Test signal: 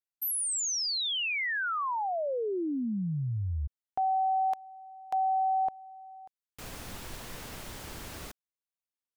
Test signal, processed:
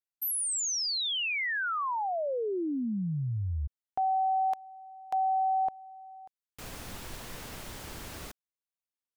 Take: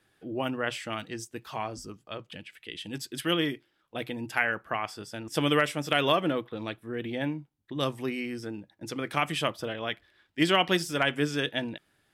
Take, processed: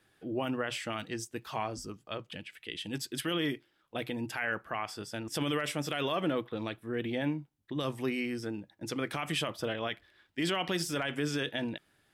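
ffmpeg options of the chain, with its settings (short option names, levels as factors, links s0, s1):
-af "alimiter=limit=0.0841:level=0:latency=1:release=41"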